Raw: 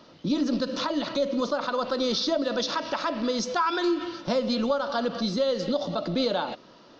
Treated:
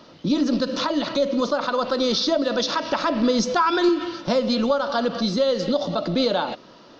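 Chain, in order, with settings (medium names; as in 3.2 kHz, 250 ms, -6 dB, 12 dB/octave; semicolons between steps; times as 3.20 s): 2.91–3.89 s: bass shelf 350 Hz +6 dB; trim +4.5 dB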